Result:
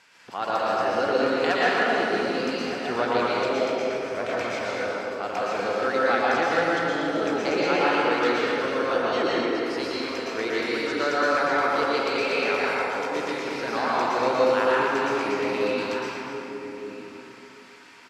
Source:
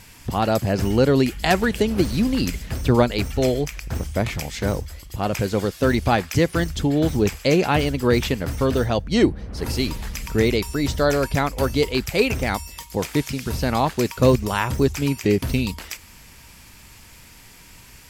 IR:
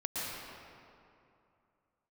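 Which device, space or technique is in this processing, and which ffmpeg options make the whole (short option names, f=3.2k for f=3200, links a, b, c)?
station announcement: -filter_complex "[0:a]highpass=440,lowpass=5k,equalizer=f=1.4k:t=o:w=0.43:g=7,aecho=1:1:239.1|274.1:0.316|0.251[a];[1:a]atrim=start_sample=2205[b];[a][b]afir=irnorm=-1:irlink=0,asplit=2[c][d];[d]adelay=1224,volume=-9dB,highshelf=f=4k:g=-27.6[e];[c][e]amix=inputs=2:normalize=0,volume=-5.5dB"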